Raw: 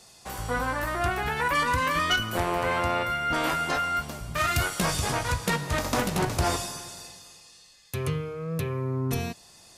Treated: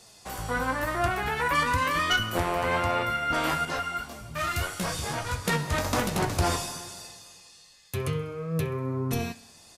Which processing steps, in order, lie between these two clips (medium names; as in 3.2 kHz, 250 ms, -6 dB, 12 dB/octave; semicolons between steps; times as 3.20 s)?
flange 0.98 Hz, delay 8.4 ms, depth 4.9 ms, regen +63%; feedback delay 65 ms, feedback 58%, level -21 dB; 3.65–5.45 s: detune thickener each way 16 cents; trim +4 dB